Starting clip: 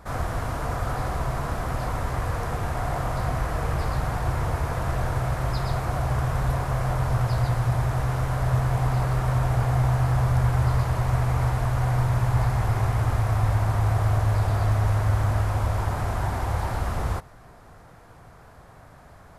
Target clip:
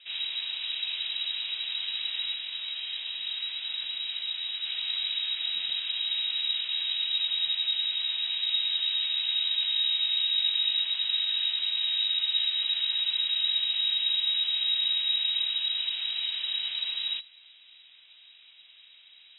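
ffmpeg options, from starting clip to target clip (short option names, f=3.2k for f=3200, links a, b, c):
-filter_complex "[0:a]asettb=1/sr,asplit=3[a][b][c];[a]atrim=end=2.344[d];[b]atrim=start=2.34:end=4.65,asetpts=PTS-STARTPTS,afade=t=in:d=0.004:c=qsin,afade=t=out:st=2.306:d=0.004:c=qsin,flanger=delay=15.5:depth=7:speed=2.6[e];[c]atrim=start=4.646[f];[d][e]acrossfade=d=0.004:c1=hsin:c2=qsin[g];[g][f]acrossfade=d=0.004:c1=qsin:c2=hsin,lowpass=f=3.3k:t=q:w=0.5098,lowpass=f=3.3k:t=q:w=0.6013,lowpass=f=3.3k:t=q:w=0.9,lowpass=f=3.3k:t=q:w=2.563,afreqshift=-3900,volume=-6dB"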